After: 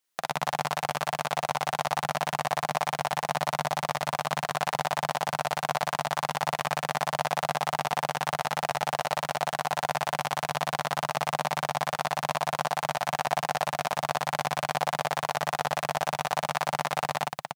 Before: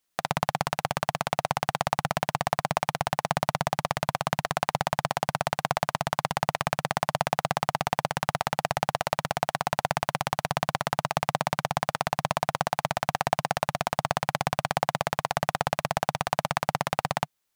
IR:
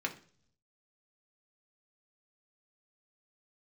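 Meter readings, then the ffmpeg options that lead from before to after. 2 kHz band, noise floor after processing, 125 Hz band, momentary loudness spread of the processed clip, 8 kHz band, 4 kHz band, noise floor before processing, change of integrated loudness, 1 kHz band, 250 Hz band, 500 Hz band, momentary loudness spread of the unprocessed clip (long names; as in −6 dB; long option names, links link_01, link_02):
0.0 dB, −55 dBFS, −5.5 dB, 1 LU, +0.5 dB, +0.5 dB, −76 dBFS, −0.5 dB, 0.0 dB, −5.5 dB, −1.0 dB, 2 LU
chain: -af "lowshelf=frequency=200:gain=-11,aecho=1:1:46.65|279.9:0.708|0.631,volume=-2.5dB"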